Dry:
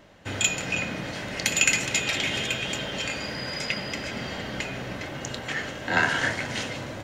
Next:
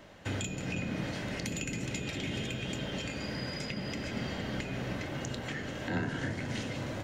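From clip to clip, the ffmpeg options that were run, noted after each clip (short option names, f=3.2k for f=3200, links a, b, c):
-filter_complex "[0:a]acrossover=split=400[a][b];[b]acompressor=threshold=-39dB:ratio=6[c];[a][c]amix=inputs=2:normalize=0"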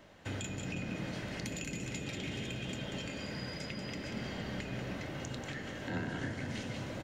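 -af "aecho=1:1:188:0.447,volume=-4.5dB"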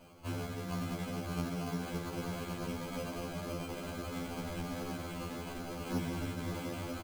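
-af "acrusher=samples=24:mix=1:aa=0.000001,aecho=1:1:562:0.398,afftfilt=real='re*2*eq(mod(b,4),0)':imag='im*2*eq(mod(b,4),0)':win_size=2048:overlap=0.75,volume=3dB"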